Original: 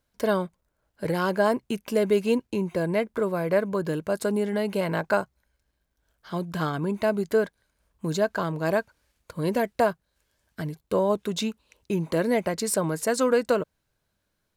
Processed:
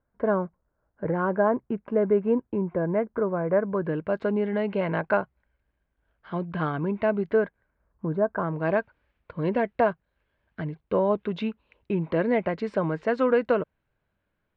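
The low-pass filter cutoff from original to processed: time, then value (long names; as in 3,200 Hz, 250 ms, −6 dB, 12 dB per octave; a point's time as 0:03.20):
low-pass filter 24 dB per octave
0:03.55 1,600 Hz
0:04.09 2,700 Hz
0:07.26 2,700 Hz
0:08.26 1,300 Hz
0:08.66 2,800 Hz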